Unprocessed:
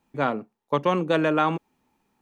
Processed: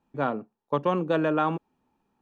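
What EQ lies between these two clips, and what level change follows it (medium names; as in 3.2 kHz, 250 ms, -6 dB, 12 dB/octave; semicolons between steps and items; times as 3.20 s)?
peaking EQ 2.1 kHz -8.5 dB 0.22 oct; treble shelf 3.8 kHz -12 dB; -2.0 dB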